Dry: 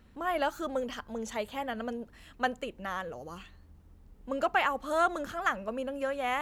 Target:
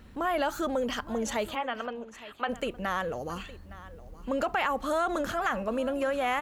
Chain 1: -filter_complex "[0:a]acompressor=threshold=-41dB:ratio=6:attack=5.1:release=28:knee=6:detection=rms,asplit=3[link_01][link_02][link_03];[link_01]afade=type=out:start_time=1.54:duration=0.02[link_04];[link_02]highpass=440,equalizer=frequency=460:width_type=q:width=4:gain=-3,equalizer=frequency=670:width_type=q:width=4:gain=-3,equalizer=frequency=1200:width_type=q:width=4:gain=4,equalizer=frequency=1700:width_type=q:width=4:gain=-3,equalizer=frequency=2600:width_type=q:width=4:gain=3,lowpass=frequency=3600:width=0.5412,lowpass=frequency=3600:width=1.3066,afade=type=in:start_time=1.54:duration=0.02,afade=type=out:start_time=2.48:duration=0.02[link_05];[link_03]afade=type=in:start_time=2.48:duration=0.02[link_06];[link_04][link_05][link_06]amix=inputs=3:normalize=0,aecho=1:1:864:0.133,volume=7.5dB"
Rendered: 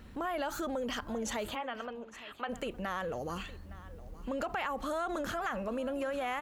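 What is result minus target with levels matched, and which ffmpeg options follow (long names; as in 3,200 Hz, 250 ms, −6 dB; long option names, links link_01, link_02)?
downward compressor: peak gain reduction +7 dB
-filter_complex "[0:a]acompressor=threshold=-32.5dB:ratio=6:attack=5.1:release=28:knee=6:detection=rms,asplit=3[link_01][link_02][link_03];[link_01]afade=type=out:start_time=1.54:duration=0.02[link_04];[link_02]highpass=440,equalizer=frequency=460:width_type=q:width=4:gain=-3,equalizer=frequency=670:width_type=q:width=4:gain=-3,equalizer=frequency=1200:width_type=q:width=4:gain=4,equalizer=frequency=1700:width_type=q:width=4:gain=-3,equalizer=frequency=2600:width_type=q:width=4:gain=3,lowpass=frequency=3600:width=0.5412,lowpass=frequency=3600:width=1.3066,afade=type=in:start_time=1.54:duration=0.02,afade=type=out:start_time=2.48:duration=0.02[link_05];[link_03]afade=type=in:start_time=2.48:duration=0.02[link_06];[link_04][link_05][link_06]amix=inputs=3:normalize=0,aecho=1:1:864:0.133,volume=7.5dB"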